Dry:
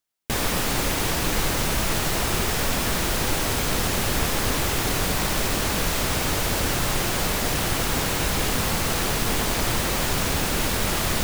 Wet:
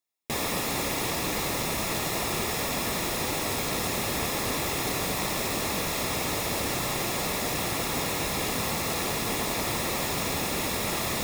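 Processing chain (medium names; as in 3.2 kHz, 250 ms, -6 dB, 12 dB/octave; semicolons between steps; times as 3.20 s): comb of notches 1.5 kHz; trim -3 dB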